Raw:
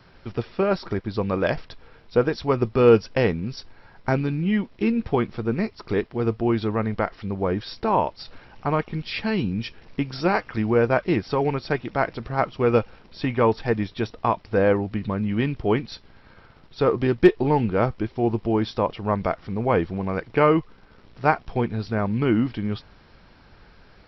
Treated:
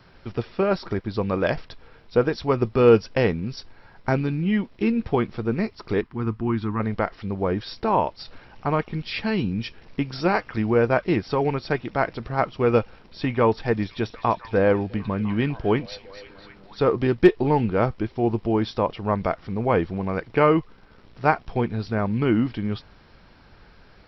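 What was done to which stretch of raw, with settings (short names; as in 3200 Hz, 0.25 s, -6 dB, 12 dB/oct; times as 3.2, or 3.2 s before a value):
6.01–6.8 EQ curve 290 Hz 0 dB, 590 Hz -18 dB, 1000 Hz +2 dB, 3900 Hz -8 dB
13.39–16.82 delay with a stepping band-pass 0.251 s, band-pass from 5100 Hz, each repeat -0.7 oct, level -9 dB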